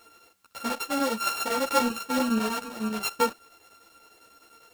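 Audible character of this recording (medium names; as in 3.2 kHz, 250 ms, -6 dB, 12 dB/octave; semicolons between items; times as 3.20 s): a buzz of ramps at a fixed pitch in blocks of 32 samples; chopped level 10 Hz, depth 60%, duty 80%; a quantiser's noise floor 12-bit, dither triangular; a shimmering, thickened sound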